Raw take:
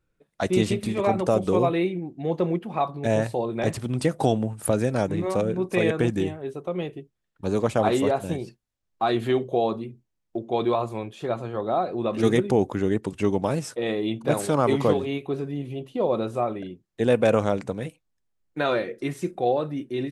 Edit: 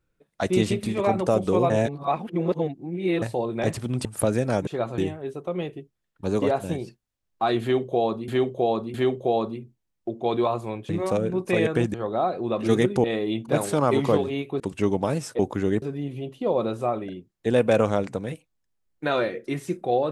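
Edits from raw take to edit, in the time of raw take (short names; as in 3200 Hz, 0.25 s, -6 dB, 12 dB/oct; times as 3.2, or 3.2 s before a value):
1.7–3.22 reverse
4.05–4.51 cut
5.13–6.18 swap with 11.17–11.48
7.62–8.02 cut
9.22–9.88 loop, 3 plays
12.58–13.01 swap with 13.8–15.36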